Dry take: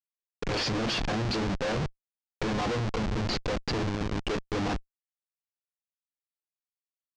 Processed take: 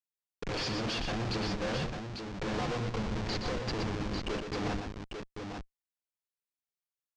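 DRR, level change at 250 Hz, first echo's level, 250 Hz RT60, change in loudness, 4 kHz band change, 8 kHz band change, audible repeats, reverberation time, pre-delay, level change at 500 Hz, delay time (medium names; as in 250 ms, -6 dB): no reverb, -4.0 dB, -6.0 dB, no reverb, -4.5 dB, -3.5 dB, -4.0 dB, 2, no reverb, no reverb, -4.0 dB, 120 ms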